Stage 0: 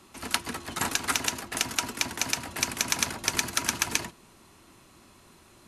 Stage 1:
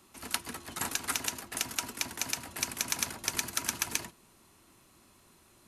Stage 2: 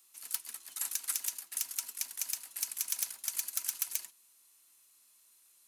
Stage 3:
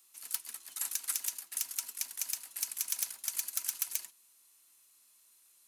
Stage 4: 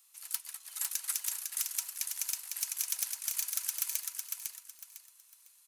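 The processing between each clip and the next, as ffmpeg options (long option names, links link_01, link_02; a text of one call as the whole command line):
ffmpeg -i in.wav -af "highshelf=frequency=11000:gain=11.5,volume=-7dB" out.wav
ffmpeg -i in.wav -af "acrusher=bits=7:mode=log:mix=0:aa=0.000001,aeval=exprs='0.106*(abs(mod(val(0)/0.106+3,4)-2)-1)':channel_layout=same,aderivative" out.wav
ffmpeg -i in.wav -af anull out.wav
ffmpeg -i in.wav -filter_complex "[0:a]acrossover=split=590[link_01][link_02];[link_01]acrusher=bits=3:dc=4:mix=0:aa=0.000001[link_03];[link_03][link_02]amix=inputs=2:normalize=0,aecho=1:1:503|1006|1509|2012:0.596|0.167|0.0467|0.0131" out.wav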